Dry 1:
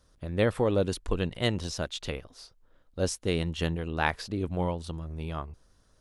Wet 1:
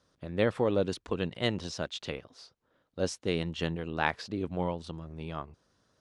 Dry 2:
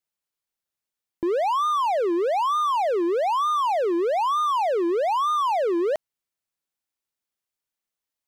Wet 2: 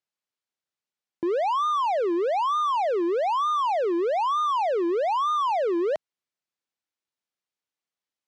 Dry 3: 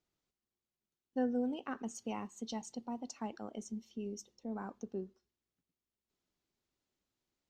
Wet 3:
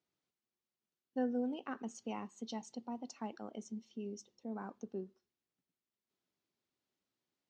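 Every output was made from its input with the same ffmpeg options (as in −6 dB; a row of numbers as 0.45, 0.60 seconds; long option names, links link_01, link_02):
-af "highpass=120,lowpass=6300,volume=-1.5dB"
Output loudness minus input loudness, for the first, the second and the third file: −2.5, −1.5, −2.0 LU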